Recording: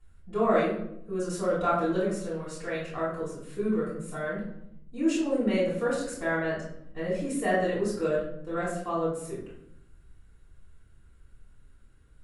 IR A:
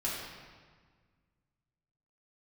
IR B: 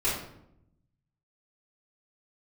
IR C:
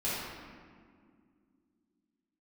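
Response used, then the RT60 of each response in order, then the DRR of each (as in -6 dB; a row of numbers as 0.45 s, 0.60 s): B; 1.6 s, 0.75 s, 2.1 s; -7.5 dB, -10.5 dB, -10.0 dB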